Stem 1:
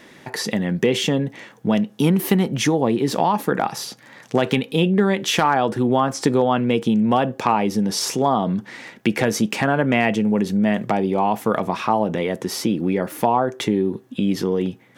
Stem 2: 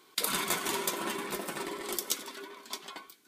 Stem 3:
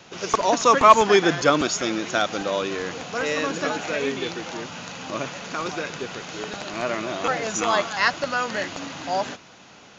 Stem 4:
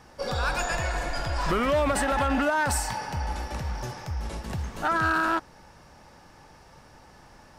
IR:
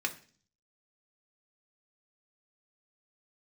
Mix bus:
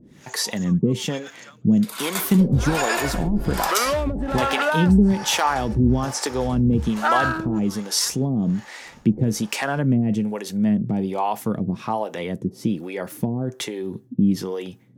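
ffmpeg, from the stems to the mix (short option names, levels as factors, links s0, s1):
-filter_complex "[0:a]bass=f=250:g=10,treble=f=4000:g=7,volume=0.794[s0];[1:a]dynaudnorm=f=110:g=7:m=3.76,adelay=1650,volume=0.631[s1];[2:a]highpass=1100,aexciter=amount=12.4:drive=5.9:freq=8000,volume=0.15[s2];[3:a]acontrast=39,adelay=2200,volume=1.12[s3];[s0][s1][s2][s3]amix=inputs=4:normalize=0,acrossover=split=420[s4][s5];[s4]aeval=exprs='val(0)*(1-1/2+1/2*cos(2*PI*1.2*n/s))':c=same[s6];[s5]aeval=exprs='val(0)*(1-1/2-1/2*cos(2*PI*1.2*n/s))':c=same[s7];[s6][s7]amix=inputs=2:normalize=0"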